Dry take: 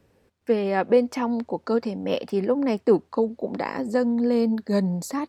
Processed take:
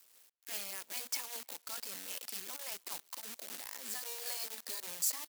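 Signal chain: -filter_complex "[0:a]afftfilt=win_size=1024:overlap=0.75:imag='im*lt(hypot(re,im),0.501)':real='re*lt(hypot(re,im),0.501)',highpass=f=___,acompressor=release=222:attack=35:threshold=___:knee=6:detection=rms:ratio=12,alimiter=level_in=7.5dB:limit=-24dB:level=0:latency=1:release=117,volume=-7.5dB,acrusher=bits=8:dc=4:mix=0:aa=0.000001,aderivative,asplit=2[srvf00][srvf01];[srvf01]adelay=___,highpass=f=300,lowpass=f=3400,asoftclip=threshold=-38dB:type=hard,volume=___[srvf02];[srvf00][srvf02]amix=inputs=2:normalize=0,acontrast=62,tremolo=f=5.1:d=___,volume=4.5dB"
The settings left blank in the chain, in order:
81, -34dB, 300, -30dB, 0.34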